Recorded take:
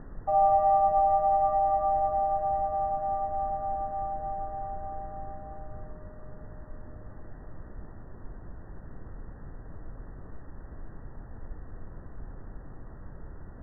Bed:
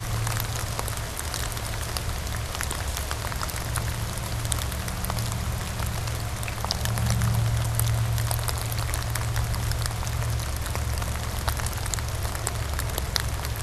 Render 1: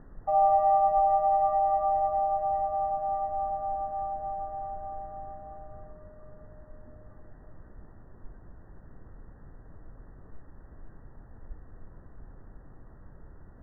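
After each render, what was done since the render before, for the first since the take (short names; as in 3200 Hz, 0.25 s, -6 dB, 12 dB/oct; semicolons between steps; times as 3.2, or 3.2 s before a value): noise print and reduce 6 dB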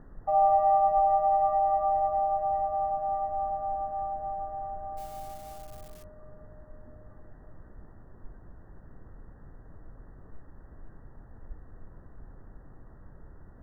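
4.97–6.04 switching spikes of -39.5 dBFS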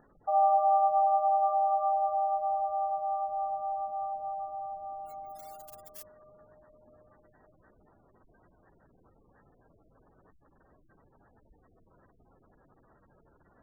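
spectral gate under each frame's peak -30 dB strong; tilt +4.5 dB/oct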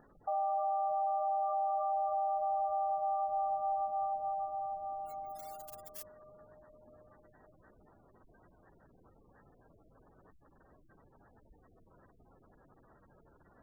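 limiter -27 dBFS, peak gain reduction 11 dB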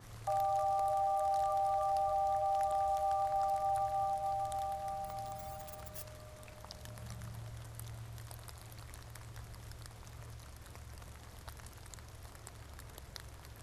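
add bed -23 dB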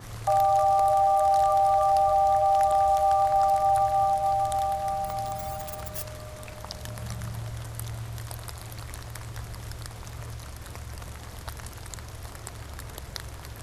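gain +11.5 dB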